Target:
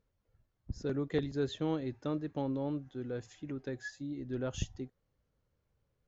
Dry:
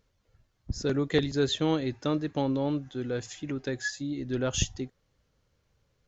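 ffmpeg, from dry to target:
-af "highshelf=f=2.1k:g=-10,volume=-6.5dB"

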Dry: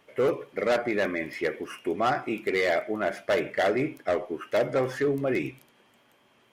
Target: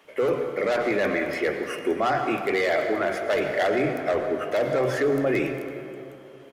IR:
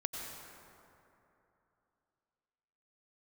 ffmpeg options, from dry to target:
-filter_complex "[0:a]acrossover=split=200[a][b];[a]adelay=40[c];[c][b]amix=inputs=2:normalize=0,asplit=2[d][e];[1:a]atrim=start_sample=2205[f];[e][f]afir=irnorm=-1:irlink=0,volume=-3dB[g];[d][g]amix=inputs=2:normalize=0,alimiter=limit=-16dB:level=0:latency=1:release=11,volume=1dB"

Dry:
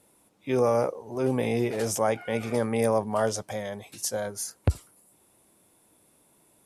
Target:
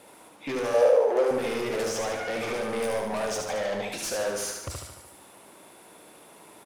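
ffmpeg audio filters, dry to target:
-filter_complex "[0:a]asettb=1/sr,asplit=3[a][b][c];[a]atrim=end=1.894[d];[b]atrim=start=1.89:end=2.81,asetpts=PTS-STARTPTS,afade=t=in:d=0.004:c=qsin,afade=t=out:st=0.916:d=0.004:c=qsin,acrossover=split=5800[e][f];[f]acompressor=threshold=-48dB:ratio=4:attack=1:release=60[g];[e][g]amix=inputs=2:normalize=0[h];[c]atrim=start=2.806[i];[d][h]acrossfade=d=0.004:c1=hsin:c2=qsin[j];[j][i]acrossfade=d=0.004:c1=qsin:c2=hsin,asettb=1/sr,asplit=3[k][l][m];[k]atrim=end=3.494[n];[l]atrim=start=3.49:end=3.92,asetpts=PTS-STARTPTS,afade=t=in:d=0.004:c=qsin,afade=t=out:st=0.426:d=0.004:c=qsin,equalizer=f=9.7k:w=1:g=-8.5[o];[m]atrim=start=3.916[p];[n][o]acrossfade=d=0.004:c1=hsin:c2=qsin[q];[q][p]acrossfade=d=0.004:c1=qsin:c2=hsin,acrossover=split=4500[r][s];[r]acompressor=threshold=-32dB:ratio=6[t];[s]acrusher=bits=2:mode=log:mix=0:aa=0.000001[u];[t][u]amix=inputs=2:normalize=0,asplit=2[v][w];[w]highpass=f=720:p=1,volume=22dB,asoftclip=type=tanh:threshold=-15.5dB[x];[v][x]amix=inputs=2:normalize=0,lowpass=f=2.2k:p=1,volume=-6dB,flanger=delay=10:depth=5.8:regen=-85:speed=0.77:shape=triangular,asoftclip=type=tanh:threshold=-34dB,asettb=1/sr,asplit=3[y][z][aa];[y]atrim=end=0.744[ab];[z]atrim=start=0.74:end=1.31,asetpts=PTS-STARTPTS,afade=t=in:d=0.004:c=qsin,afade=t=out:st=0.566:d=0.004:c=qsin,highpass=f=500:t=q:w=4.9[ac];[aa]atrim=start=1.306[ad];[ab][ac]acrossfade=d=0.004:c1=hsin:c2=qsin[ae];[ae][ad]acrossfade=d=0.004:c1=qsin:c2=hsin,aecho=1:1:74|148|222|296|370|444|518:0.631|0.347|0.191|0.105|0.0577|0.0318|0.0175,volume=6dB"

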